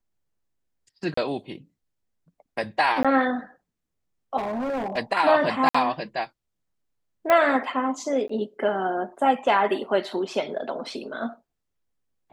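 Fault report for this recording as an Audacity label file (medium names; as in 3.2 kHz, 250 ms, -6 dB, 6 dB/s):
1.140000	1.170000	dropout 34 ms
3.030000	3.050000	dropout 16 ms
4.370000	4.980000	clipped -25 dBFS
5.690000	5.750000	dropout 55 ms
7.300000	7.300000	pop -9 dBFS
8.280000	8.290000	dropout 14 ms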